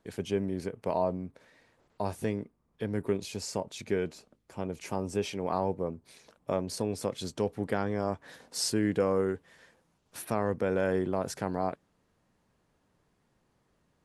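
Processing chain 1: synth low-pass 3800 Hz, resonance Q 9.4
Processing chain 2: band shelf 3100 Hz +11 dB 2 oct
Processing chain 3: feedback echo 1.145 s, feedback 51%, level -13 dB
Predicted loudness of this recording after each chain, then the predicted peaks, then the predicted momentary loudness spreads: -31.5, -30.5, -33.0 LUFS; -13.5, -10.0, -14.5 dBFS; 12, 13, 16 LU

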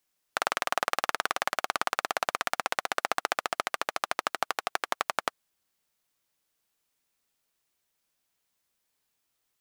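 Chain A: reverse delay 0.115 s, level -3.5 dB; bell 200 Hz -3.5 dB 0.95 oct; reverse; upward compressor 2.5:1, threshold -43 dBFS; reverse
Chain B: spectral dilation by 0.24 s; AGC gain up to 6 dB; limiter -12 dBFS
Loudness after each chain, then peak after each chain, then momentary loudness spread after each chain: -29.5, -25.5 LUFS; -5.0, -12.0 dBFS; 3, 4 LU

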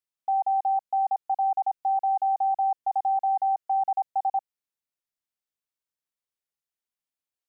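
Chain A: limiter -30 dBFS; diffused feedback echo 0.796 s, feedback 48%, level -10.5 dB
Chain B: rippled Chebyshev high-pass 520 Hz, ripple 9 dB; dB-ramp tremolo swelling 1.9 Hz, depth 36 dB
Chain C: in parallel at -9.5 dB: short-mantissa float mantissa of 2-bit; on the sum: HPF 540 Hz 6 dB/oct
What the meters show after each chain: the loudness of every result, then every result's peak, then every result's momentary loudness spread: -37.0, -37.0, -25.5 LUFS; -29.0, -22.5, -19.0 dBFS; 18, 9, 3 LU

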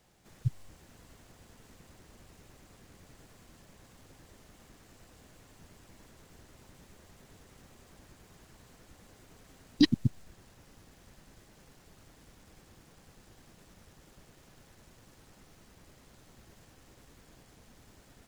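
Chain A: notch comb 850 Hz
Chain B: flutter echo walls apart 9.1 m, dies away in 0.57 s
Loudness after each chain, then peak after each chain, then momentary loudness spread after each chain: -30.5, -30.5 LUFS; -10.0, -9.0 dBFS; 12, 16 LU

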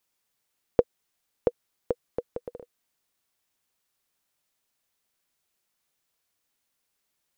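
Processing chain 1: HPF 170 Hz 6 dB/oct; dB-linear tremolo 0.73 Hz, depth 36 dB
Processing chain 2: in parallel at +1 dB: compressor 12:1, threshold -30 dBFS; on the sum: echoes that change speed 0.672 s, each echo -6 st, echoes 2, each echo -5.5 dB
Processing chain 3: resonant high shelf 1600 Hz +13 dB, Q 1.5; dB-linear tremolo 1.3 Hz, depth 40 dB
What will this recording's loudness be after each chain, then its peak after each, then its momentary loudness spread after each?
-35.0, -32.5, -34.0 LUFS; -11.5, -2.5, -5.5 dBFS; 19, 20, 19 LU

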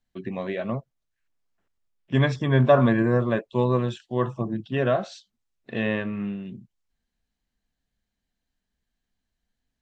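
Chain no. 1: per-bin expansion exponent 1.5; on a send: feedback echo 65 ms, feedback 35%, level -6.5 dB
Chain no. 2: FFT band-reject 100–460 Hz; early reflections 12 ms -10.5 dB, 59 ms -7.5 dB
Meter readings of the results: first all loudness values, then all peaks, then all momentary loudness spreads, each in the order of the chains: -25.5, -26.5 LUFS; -6.5, -5.5 dBFS; 18, 19 LU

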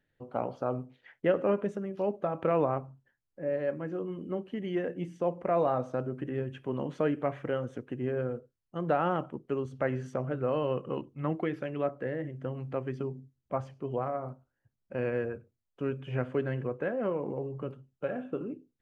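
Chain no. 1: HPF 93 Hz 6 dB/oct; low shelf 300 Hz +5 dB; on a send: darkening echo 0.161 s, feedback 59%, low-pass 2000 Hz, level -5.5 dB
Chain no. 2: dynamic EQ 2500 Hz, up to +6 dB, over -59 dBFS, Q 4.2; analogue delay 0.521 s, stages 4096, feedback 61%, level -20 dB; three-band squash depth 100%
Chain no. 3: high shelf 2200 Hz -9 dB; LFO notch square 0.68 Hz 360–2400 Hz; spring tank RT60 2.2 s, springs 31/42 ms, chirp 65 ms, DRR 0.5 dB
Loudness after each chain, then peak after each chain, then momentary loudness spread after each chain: -30.5, -32.5, -32.5 LUFS; -11.5, -14.0, -14.5 dBFS; 9, 5, 10 LU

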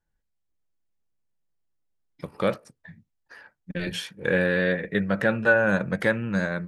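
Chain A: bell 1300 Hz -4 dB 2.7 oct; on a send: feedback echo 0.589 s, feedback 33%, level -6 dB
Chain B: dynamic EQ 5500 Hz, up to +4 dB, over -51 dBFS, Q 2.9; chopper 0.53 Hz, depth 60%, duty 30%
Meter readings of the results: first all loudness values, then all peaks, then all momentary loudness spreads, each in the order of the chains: -26.0, -28.5 LUFS; -8.0, -8.5 dBFS; 15, 12 LU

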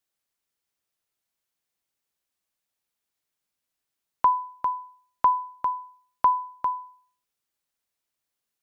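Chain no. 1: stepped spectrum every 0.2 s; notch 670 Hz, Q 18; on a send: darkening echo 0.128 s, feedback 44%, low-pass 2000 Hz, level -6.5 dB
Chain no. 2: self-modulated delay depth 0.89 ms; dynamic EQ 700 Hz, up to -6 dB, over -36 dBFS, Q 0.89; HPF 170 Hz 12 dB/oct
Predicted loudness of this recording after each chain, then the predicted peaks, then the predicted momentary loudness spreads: -28.5, -25.5 LUFS; -18.5, -10.5 dBFS; 8, 11 LU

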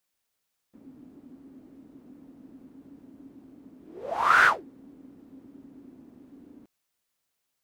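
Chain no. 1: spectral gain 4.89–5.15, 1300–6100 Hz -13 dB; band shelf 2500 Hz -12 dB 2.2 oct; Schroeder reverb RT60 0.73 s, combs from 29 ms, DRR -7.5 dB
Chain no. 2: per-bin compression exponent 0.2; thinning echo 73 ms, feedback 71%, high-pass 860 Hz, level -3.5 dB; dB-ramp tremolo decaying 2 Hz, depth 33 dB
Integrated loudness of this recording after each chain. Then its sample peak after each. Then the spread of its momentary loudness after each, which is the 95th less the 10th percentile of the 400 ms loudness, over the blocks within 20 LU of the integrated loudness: -24.5, -30.0 LUFS; -7.0, -5.0 dBFS; 23, 12 LU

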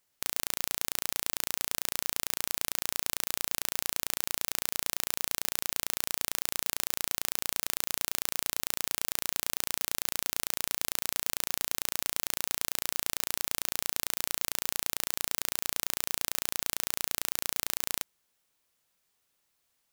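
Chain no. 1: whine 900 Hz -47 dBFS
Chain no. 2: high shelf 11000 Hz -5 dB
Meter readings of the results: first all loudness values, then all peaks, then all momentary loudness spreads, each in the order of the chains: -31.0, -33.5 LUFS; -2.0, -4.5 dBFS; 1, 0 LU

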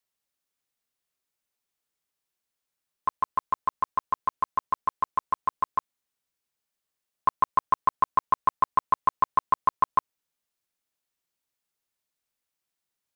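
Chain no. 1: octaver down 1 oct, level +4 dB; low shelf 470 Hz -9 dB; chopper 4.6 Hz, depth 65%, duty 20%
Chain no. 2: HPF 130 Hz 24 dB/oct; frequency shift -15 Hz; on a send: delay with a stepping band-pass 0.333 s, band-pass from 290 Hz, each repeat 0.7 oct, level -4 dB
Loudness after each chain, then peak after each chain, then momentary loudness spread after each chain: -33.5, -27.0 LUFS; -13.0, -10.5 dBFS; 12, 16 LU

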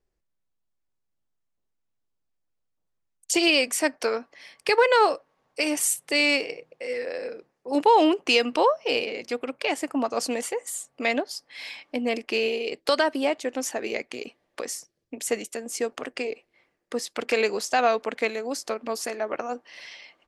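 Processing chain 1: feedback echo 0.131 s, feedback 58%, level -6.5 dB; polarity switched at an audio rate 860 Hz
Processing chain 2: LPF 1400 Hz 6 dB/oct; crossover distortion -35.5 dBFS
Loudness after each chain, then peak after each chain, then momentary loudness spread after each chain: -23.5, -29.0 LUFS; -6.0, -9.5 dBFS; 15, 17 LU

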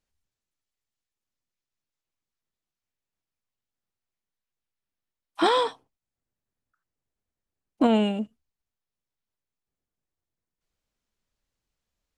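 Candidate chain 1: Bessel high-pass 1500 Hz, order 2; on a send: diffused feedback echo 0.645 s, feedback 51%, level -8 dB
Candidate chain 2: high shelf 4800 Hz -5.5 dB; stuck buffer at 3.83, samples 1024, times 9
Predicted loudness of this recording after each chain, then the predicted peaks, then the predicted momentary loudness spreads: -36.0, -24.5 LUFS; -15.5, -10.0 dBFS; 22, 11 LU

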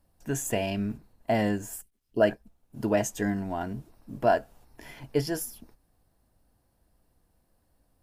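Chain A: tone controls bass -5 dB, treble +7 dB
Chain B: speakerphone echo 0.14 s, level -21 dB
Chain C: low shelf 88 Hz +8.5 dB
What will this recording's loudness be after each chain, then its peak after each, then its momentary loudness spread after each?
-29.5, -29.5, -29.0 LUFS; -10.5, -10.5, -10.5 dBFS; 14, 16, 16 LU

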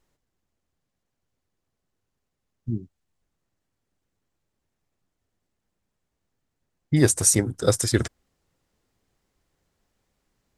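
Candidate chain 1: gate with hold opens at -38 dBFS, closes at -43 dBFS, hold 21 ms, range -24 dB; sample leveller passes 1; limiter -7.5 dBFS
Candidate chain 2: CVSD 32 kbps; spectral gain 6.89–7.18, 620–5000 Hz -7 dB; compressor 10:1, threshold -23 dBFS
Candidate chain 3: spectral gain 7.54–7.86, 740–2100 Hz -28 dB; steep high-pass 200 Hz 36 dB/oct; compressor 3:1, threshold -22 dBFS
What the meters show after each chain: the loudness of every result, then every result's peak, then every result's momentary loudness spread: -20.5, -32.0, -27.5 LUFS; -7.5, -12.5, -10.5 dBFS; 14, 11, 14 LU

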